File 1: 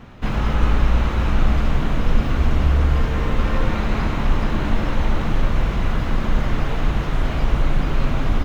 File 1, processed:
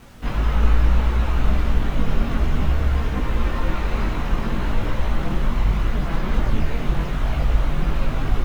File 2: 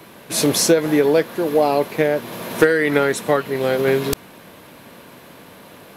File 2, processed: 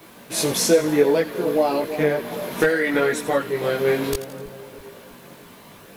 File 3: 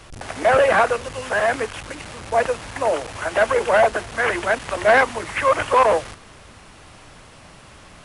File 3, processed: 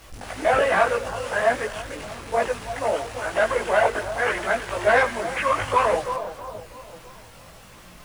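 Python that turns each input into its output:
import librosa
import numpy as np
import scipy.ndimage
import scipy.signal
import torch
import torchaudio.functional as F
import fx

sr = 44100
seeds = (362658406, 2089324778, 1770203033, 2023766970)

y = fx.echo_split(x, sr, split_hz=1400.0, low_ms=327, high_ms=84, feedback_pct=52, wet_db=-13)
y = fx.quant_dither(y, sr, seeds[0], bits=8, dither='none')
y = fx.chorus_voices(y, sr, voices=4, hz=0.59, base_ms=19, depth_ms=3.0, mix_pct=50)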